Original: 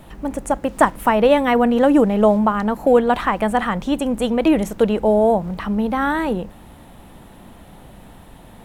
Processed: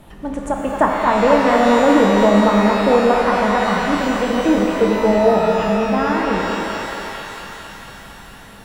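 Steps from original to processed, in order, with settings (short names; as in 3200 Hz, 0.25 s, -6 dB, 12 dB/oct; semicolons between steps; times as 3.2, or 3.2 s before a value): thinning echo 0.226 s, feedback 82%, high-pass 500 Hz, level -4 dB; treble ducked by the level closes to 2000 Hz, closed at -14.5 dBFS; shimmer reverb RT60 2.5 s, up +12 st, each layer -8 dB, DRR 1 dB; gain -2 dB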